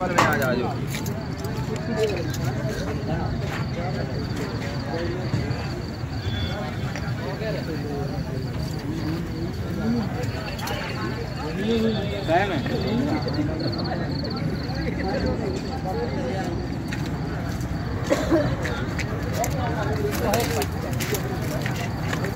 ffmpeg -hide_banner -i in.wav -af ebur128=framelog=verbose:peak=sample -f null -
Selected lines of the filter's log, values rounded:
Integrated loudness:
  I:         -26.2 LUFS
  Threshold: -36.2 LUFS
Loudness range:
  LRA:         3.5 LU
  Threshold: -46.4 LUFS
  LRA low:   -28.1 LUFS
  LRA high:  -24.6 LUFS
Sample peak:
  Peak:       -3.7 dBFS